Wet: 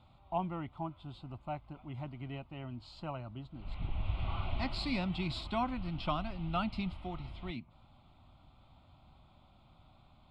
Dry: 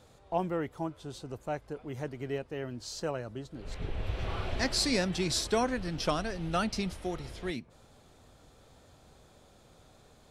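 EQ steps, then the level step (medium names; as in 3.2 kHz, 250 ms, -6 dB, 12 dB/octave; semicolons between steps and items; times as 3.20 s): distance through air 160 m; static phaser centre 1.7 kHz, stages 6; 0.0 dB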